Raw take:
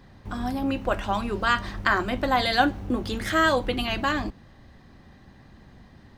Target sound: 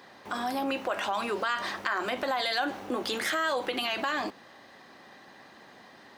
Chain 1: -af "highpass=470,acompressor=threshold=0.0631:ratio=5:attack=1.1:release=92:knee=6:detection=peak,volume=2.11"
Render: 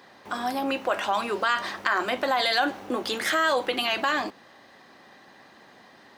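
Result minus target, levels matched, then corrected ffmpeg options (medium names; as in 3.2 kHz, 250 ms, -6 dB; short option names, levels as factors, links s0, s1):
compression: peak gain reduction -5.5 dB
-af "highpass=470,acompressor=threshold=0.0282:ratio=5:attack=1.1:release=92:knee=6:detection=peak,volume=2.11"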